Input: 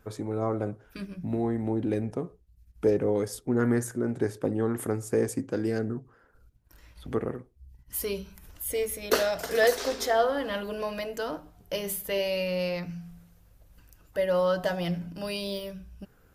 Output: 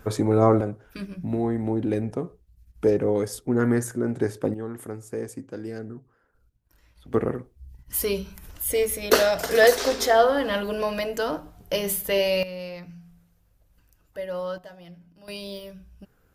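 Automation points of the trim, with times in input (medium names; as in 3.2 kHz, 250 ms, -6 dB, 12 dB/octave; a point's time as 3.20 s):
+11 dB
from 0.61 s +3 dB
from 4.54 s -6 dB
from 7.14 s +6 dB
from 12.43 s -6 dB
from 14.58 s -16 dB
from 15.28 s -3 dB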